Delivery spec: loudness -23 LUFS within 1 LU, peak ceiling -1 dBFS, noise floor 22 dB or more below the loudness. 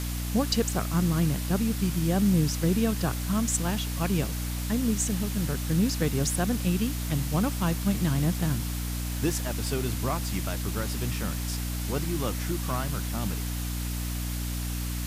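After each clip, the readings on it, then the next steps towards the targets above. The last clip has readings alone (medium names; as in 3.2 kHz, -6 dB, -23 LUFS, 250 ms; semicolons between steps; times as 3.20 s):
hum 60 Hz; highest harmonic 300 Hz; hum level -29 dBFS; noise floor -31 dBFS; noise floor target -50 dBFS; loudness -28.0 LUFS; peak level -12.5 dBFS; loudness target -23.0 LUFS
-> de-hum 60 Hz, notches 5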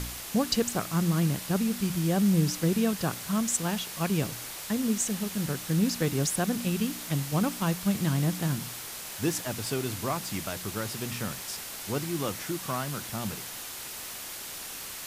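hum not found; noise floor -40 dBFS; noise floor target -52 dBFS
-> noise reduction 12 dB, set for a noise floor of -40 dBFS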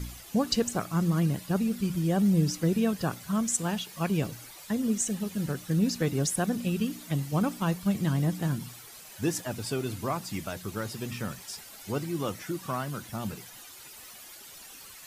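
noise floor -48 dBFS; noise floor target -52 dBFS
-> noise reduction 6 dB, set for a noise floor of -48 dBFS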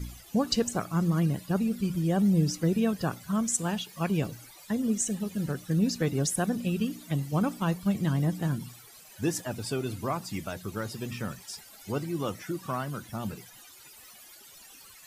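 noise floor -52 dBFS; loudness -29.5 LUFS; peak level -13.5 dBFS; loudness target -23.0 LUFS
-> trim +6.5 dB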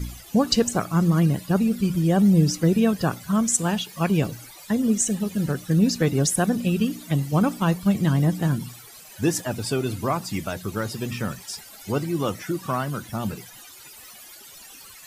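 loudness -23.0 LUFS; peak level -7.0 dBFS; noise floor -45 dBFS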